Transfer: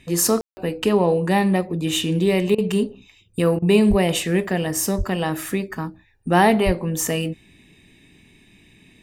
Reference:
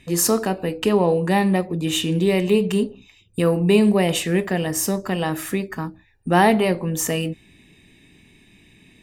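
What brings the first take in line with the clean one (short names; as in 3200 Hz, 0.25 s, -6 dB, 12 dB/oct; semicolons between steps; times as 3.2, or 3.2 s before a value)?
de-plosive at 3.89/4.97/6.65; room tone fill 0.41–0.57; interpolate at 2.55/3.59, 31 ms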